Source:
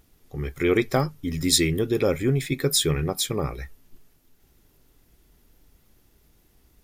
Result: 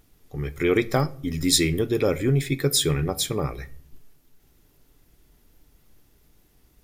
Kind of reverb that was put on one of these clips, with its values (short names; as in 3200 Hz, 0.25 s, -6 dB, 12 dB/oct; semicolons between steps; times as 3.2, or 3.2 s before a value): shoebox room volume 730 m³, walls furnished, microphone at 0.4 m